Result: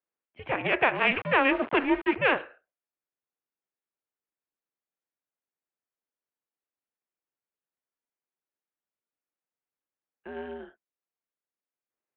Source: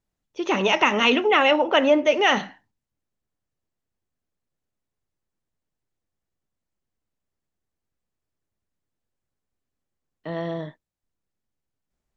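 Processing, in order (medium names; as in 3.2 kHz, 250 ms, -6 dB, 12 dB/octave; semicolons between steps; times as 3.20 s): Chebyshev shaper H 3 -19 dB, 4 -15 dB, 5 -38 dB, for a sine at -4.5 dBFS; 0.95–2.16 s: small samples zeroed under -26.5 dBFS; mistuned SSB -260 Hz 560–3000 Hz; trim -2.5 dB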